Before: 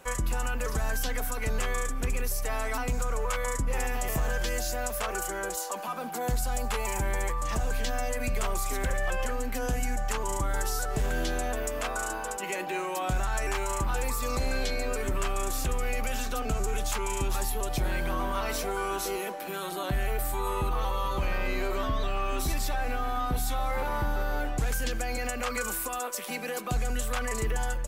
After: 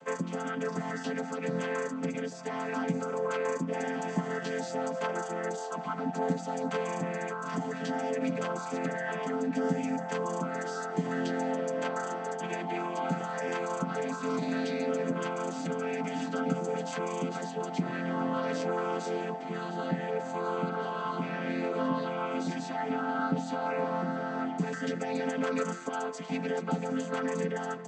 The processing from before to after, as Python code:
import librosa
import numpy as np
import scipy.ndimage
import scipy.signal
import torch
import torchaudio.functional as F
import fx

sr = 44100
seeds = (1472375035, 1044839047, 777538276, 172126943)

y = fx.chord_vocoder(x, sr, chord='major triad', root=53)
y = y + 0.37 * np.pad(y, (int(7.0 * sr / 1000.0), 0))[:len(y)]
y = y * librosa.db_to_amplitude(1.5)